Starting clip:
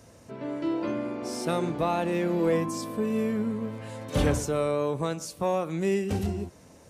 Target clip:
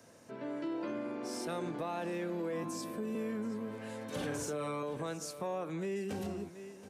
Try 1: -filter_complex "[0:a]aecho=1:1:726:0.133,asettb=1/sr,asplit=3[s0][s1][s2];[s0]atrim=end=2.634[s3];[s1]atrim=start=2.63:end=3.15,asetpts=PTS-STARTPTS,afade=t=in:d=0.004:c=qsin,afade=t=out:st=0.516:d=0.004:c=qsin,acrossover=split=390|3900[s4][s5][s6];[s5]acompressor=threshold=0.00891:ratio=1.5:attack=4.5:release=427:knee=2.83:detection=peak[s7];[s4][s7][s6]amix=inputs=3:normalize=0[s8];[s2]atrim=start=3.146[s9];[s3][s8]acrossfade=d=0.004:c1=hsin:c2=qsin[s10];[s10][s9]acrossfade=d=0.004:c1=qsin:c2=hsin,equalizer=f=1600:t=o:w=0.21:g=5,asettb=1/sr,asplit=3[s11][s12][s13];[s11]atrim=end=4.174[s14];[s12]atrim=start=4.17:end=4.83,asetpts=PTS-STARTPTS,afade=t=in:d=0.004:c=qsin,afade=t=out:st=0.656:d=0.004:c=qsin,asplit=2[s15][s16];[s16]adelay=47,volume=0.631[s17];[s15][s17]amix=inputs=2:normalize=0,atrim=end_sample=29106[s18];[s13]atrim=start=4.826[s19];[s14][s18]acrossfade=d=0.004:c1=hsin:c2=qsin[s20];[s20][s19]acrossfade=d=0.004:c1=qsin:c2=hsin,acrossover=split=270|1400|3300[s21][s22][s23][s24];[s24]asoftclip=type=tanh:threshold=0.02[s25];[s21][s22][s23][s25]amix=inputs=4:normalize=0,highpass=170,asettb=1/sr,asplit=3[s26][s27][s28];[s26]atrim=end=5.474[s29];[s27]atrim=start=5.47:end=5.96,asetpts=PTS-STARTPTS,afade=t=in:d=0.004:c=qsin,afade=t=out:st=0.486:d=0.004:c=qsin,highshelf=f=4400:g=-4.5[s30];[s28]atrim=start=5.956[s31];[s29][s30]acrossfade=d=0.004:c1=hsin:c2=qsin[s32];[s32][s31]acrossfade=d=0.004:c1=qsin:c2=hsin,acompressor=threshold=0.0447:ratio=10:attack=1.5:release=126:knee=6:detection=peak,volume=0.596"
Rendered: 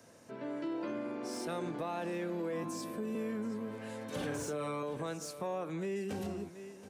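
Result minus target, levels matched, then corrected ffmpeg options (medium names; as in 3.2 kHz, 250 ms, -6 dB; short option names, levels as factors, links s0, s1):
saturation: distortion +17 dB
-filter_complex "[0:a]aecho=1:1:726:0.133,asettb=1/sr,asplit=3[s0][s1][s2];[s0]atrim=end=2.634[s3];[s1]atrim=start=2.63:end=3.15,asetpts=PTS-STARTPTS,afade=t=in:d=0.004:c=qsin,afade=t=out:st=0.516:d=0.004:c=qsin,acrossover=split=390|3900[s4][s5][s6];[s5]acompressor=threshold=0.00891:ratio=1.5:attack=4.5:release=427:knee=2.83:detection=peak[s7];[s4][s7][s6]amix=inputs=3:normalize=0[s8];[s2]atrim=start=3.146[s9];[s3][s8]acrossfade=d=0.004:c1=hsin:c2=qsin[s10];[s10][s9]acrossfade=d=0.004:c1=qsin:c2=hsin,equalizer=f=1600:t=o:w=0.21:g=5,asettb=1/sr,asplit=3[s11][s12][s13];[s11]atrim=end=4.174[s14];[s12]atrim=start=4.17:end=4.83,asetpts=PTS-STARTPTS,afade=t=in:d=0.004:c=qsin,afade=t=out:st=0.656:d=0.004:c=qsin,asplit=2[s15][s16];[s16]adelay=47,volume=0.631[s17];[s15][s17]amix=inputs=2:normalize=0,atrim=end_sample=29106[s18];[s13]atrim=start=4.826[s19];[s14][s18]acrossfade=d=0.004:c1=hsin:c2=qsin[s20];[s20][s19]acrossfade=d=0.004:c1=qsin:c2=hsin,acrossover=split=270|1400|3300[s21][s22][s23][s24];[s24]asoftclip=type=tanh:threshold=0.075[s25];[s21][s22][s23][s25]amix=inputs=4:normalize=0,highpass=170,asettb=1/sr,asplit=3[s26][s27][s28];[s26]atrim=end=5.474[s29];[s27]atrim=start=5.47:end=5.96,asetpts=PTS-STARTPTS,afade=t=in:d=0.004:c=qsin,afade=t=out:st=0.486:d=0.004:c=qsin,highshelf=f=4400:g=-4.5[s30];[s28]atrim=start=5.956[s31];[s29][s30]acrossfade=d=0.004:c1=hsin:c2=qsin[s32];[s32][s31]acrossfade=d=0.004:c1=qsin:c2=hsin,acompressor=threshold=0.0447:ratio=10:attack=1.5:release=126:knee=6:detection=peak,volume=0.596"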